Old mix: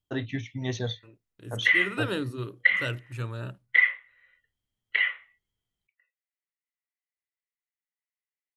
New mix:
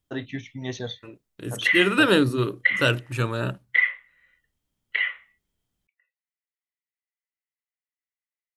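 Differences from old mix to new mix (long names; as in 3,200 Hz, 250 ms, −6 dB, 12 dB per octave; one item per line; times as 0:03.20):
second voice +12.0 dB
master: add parametric band 110 Hz −9 dB 0.3 octaves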